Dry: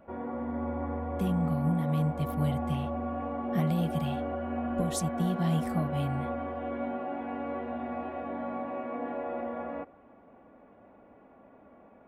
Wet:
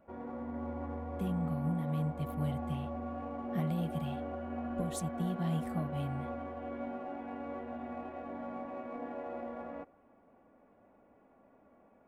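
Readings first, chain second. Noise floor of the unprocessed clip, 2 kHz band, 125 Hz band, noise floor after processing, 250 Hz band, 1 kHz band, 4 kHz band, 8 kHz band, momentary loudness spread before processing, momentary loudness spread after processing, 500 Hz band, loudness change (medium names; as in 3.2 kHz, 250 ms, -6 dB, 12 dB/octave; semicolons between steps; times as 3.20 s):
-57 dBFS, -7.0 dB, -5.5 dB, -65 dBFS, -6.0 dB, -6.5 dB, -7.5 dB, -7.5 dB, 8 LU, 9 LU, -6.5 dB, -6.0 dB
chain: peaking EQ 5.3 kHz -5.5 dB 0.44 oct; in parallel at -10 dB: hysteresis with a dead band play -32 dBFS; on the sum: trim -8 dB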